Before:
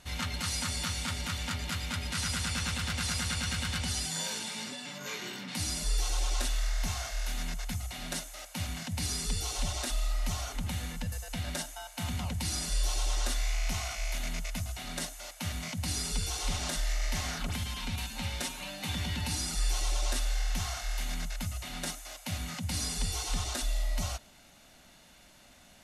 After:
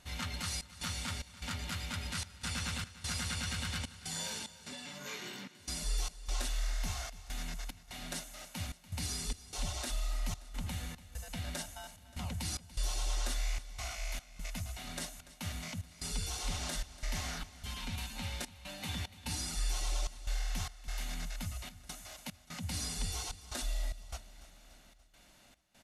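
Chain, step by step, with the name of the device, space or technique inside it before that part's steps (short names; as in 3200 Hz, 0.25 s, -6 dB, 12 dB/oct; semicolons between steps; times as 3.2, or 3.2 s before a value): trance gate with a delay (step gate "xxx.xx.x" 74 bpm -24 dB; feedback echo 0.289 s, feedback 57%, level -17 dB); gain -4.5 dB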